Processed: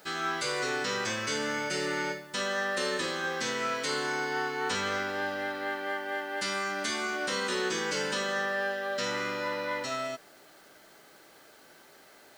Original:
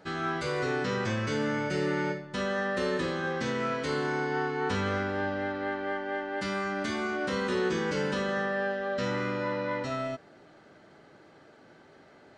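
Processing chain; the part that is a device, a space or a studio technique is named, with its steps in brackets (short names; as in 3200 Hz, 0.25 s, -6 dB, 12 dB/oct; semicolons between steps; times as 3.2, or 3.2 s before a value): turntable without a phono preamp (RIAA curve recording; white noise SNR 30 dB)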